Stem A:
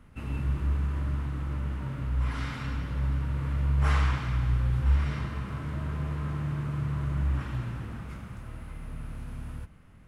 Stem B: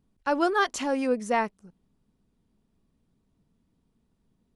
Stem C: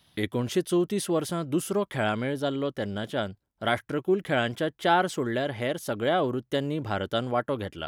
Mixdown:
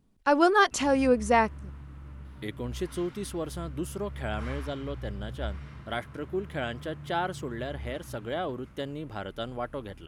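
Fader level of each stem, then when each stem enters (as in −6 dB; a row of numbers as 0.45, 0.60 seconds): −12.5, +3.0, −7.5 decibels; 0.55, 0.00, 2.25 seconds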